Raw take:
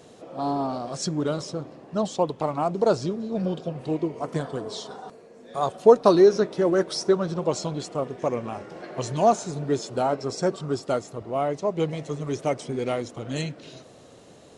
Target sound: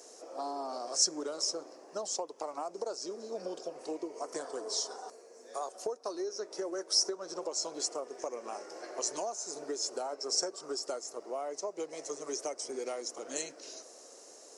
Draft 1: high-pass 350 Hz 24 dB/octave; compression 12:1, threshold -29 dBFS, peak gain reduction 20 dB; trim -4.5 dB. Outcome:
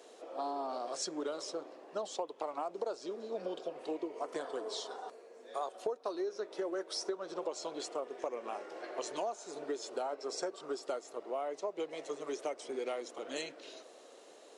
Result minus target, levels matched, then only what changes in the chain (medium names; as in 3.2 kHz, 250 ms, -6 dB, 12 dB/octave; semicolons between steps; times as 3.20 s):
8 kHz band -9.0 dB
add after compression: resonant high shelf 4.4 kHz +8 dB, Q 3